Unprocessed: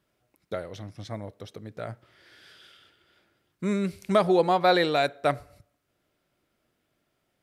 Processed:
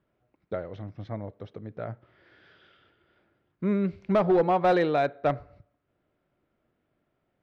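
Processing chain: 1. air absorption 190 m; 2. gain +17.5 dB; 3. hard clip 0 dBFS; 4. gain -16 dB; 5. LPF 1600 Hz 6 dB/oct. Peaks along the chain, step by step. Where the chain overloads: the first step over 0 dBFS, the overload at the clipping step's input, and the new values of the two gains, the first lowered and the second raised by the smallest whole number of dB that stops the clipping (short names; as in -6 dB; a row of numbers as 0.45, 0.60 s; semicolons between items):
-11.0, +6.5, 0.0, -16.0, -16.0 dBFS; step 2, 6.5 dB; step 2 +10.5 dB, step 4 -9 dB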